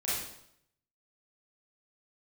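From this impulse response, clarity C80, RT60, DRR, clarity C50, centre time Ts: 3.5 dB, 0.75 s, -9.5 dB, -1.0 dB, 70 ms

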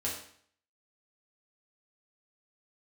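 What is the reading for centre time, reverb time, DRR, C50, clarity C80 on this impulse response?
38 ms, 0.60 s, -5.5 dB, 4.0 dB, 8.0 dB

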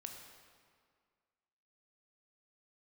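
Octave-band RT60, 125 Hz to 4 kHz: 1.8, 2.0, 1.9, 2.0, 1.7, 1.4 s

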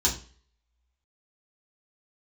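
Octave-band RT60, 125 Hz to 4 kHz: 0.45, 0.45, 0.45, 0.40, 0.40, 0.40 s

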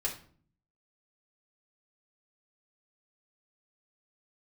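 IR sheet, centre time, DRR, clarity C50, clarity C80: 18 ms, -3.5 dB, 9.0 dB, 14.5 dB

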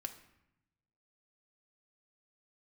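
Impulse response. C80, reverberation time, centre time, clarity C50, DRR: 14.5 dB, 0.80 s, 10 ms, 11.5 dB, 4.0 dB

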